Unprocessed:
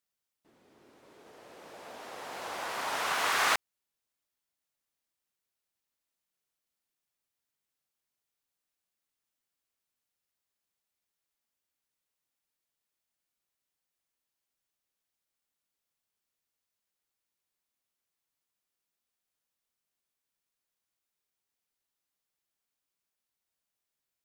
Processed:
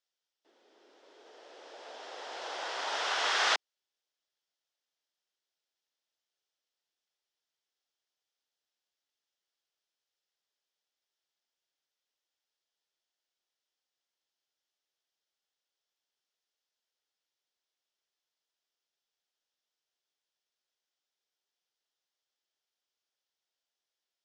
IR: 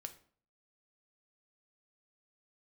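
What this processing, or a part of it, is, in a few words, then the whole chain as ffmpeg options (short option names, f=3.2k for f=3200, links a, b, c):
phone speaker on a table: -af "highpass=f=350:w=0.5412,highpass=f=350:w=1.3066,equalizer=f=1.1k:t=q:w=4:g=-5,equalizer=f=2.3k:t=q:w=4:g=-4,equalizer=f=3.3k:t=q:w=4:g=5,equalizer=f=5.3k:t=q:w=4:g=4,lowpass=f=6.5k:w=0.5412,lowpass=f=6.5k:w=1.3066"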